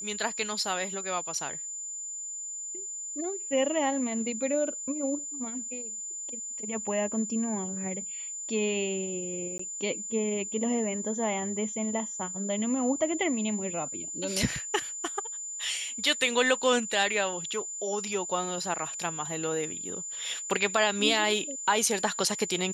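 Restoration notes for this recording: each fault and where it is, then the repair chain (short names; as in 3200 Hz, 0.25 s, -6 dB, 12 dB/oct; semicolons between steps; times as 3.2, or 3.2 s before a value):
tone 7100 Hz -35 dBFS
9.58–9.59 gap 14 ms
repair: notch 7100 Hz, Q 30; interpolate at 9.58, 14 ms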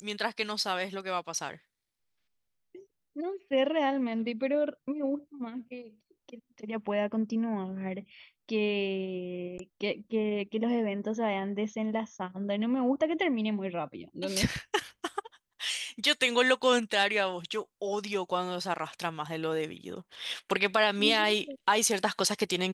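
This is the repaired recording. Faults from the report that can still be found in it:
none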